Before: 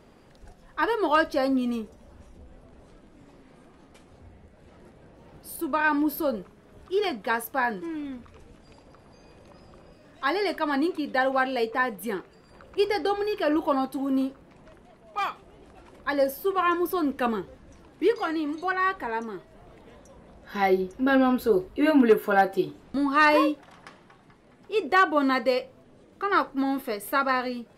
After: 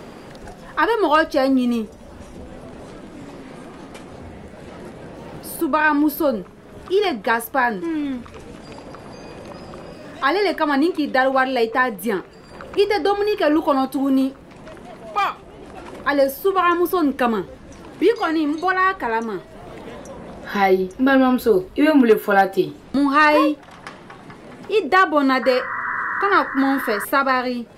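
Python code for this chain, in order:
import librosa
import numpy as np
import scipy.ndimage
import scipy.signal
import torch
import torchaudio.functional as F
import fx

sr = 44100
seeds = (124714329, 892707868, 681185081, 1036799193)

y = fx.spec_paint(x, sr, seeds[0], shape='noise', start_s=25.42, length_s=1.63, low_hz=960.0, high_hz=2000.0, level_db=-35.0)
y = fx.band_squash(y, sr, depth_pct=40)
y = y * librosa.db_to_amplitude(7.0)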